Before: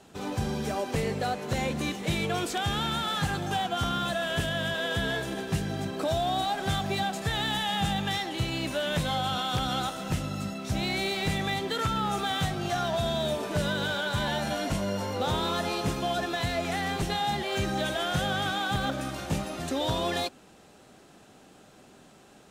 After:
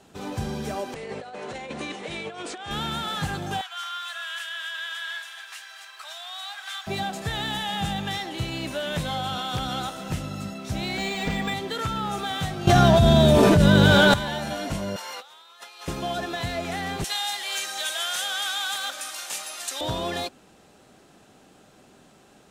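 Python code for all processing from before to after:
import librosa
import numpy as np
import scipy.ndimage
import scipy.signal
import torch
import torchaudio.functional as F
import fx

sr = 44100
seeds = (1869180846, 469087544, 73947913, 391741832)

y = fx.chain(x, sr, fx.brickwall_lowpass(high_hz=10000.0),
    fx.bass_treble(bass_db=-13, treble_db=-6),
    fx.over_compress(threshold_db=-34.0, ratio=-0.5), at=(0.94, 2.71))
y = fx.chain(y, sr, fx.highpass(hz=1200.0, slope=24),
    fx.high_shelf(hz=6400.0, db=-4.5),
    fx.echo_crushed(ms=238, feedback_pct=35, bits=10, wet_db=-11.5), at=(3.61, 6.87))
y = fx.chain(y, sr, fx.comb(ms=4.2, depth=0.96),
    fx.resample_linear(factor=4), at=(10.97, 11.54))
y = fx.chain(y, sr, fx.low_shelf(hz=330.0, db=11.5),
    fx.env_flatten(amount_pct=100), at=(12.67, 14.14))
y = fx.chain(y, sr, fx.highpass(hz=1200.0, slope=12),
    fx.over_compress(threshold_db=-41.0, ratio=-0.5), at=(14.96, 15.88))
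y = fx.chain(y, sr, fx.highpass(hz=1000.0, slope=12),
    fx.peak_eq(hz=9500.0, db=12.0, octaves=2.4), at=(17.04, 19.81))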